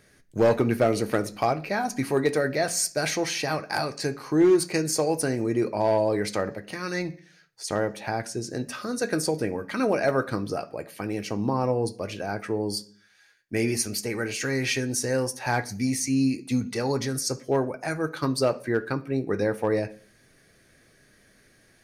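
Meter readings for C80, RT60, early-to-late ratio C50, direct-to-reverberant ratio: 23.0 dB, 0.45 s, 18.0 dB, 6.0 dB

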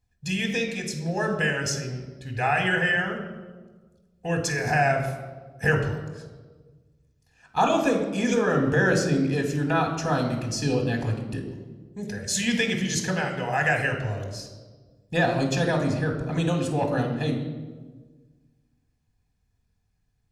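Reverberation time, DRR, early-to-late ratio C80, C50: 1.5 s, 2.5 dB, 9.0 dB, 7.0 dB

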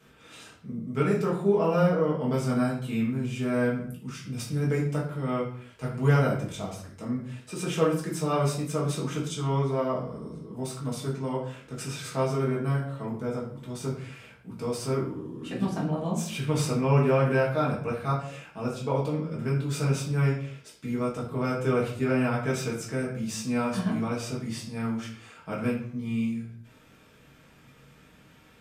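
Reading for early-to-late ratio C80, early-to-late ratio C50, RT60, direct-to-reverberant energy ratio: 9.5 dB, 5.5 dB, 0.60 s, -5.5 dB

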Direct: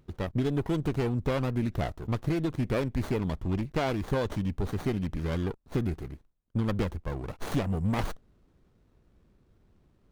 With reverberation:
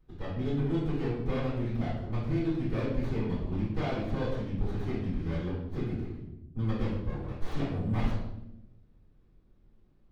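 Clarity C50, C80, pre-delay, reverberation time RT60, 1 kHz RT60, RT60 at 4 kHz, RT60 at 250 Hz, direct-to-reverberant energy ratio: 1.5 dB, 5.0 dB, 3 ms, 0.90 s, 0.70 s, 0.65 s, 1.4 s, -13.5 dB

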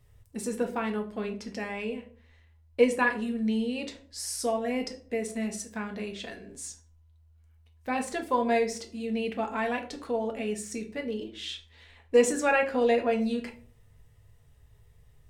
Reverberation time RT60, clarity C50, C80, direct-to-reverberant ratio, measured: 0.45 s, 13.0 dB, 17.5 dB, 3.0 dB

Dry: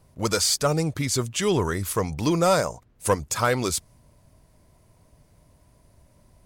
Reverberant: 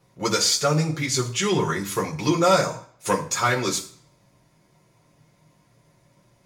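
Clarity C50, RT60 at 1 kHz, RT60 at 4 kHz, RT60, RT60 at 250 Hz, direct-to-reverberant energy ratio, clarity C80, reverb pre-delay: 12.5 dB, 0.55 s, 0.50 s, 0.55 s, 0.50 s, -1.5 dB, 16.0 dB, 3 ms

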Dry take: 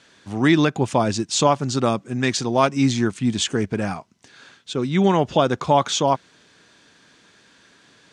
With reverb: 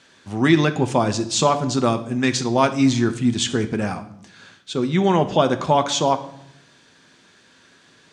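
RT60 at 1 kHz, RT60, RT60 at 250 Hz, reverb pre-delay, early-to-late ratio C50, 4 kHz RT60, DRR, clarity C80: 0.70 s, 0.75 s, 1.1 s, 5 ms, 14.0 dB, 0.60 s, 8.5 dB, 17.5 dB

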